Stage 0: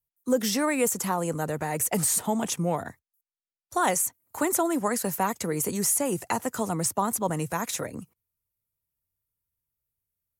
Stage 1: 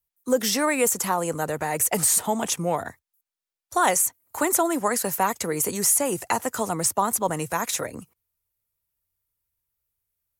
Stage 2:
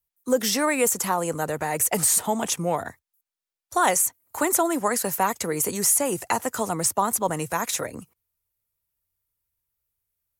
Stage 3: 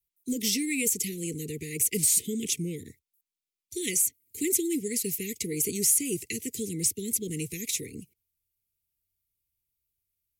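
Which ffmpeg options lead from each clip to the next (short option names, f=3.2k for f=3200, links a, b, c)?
-af "equalizer=f=170:w=0.65:g=-6.5,volume=4.5dB"
-af anull
-af "asuperstop=centerf=960:order=20:qfactor=0.6,volume=-2.5dB"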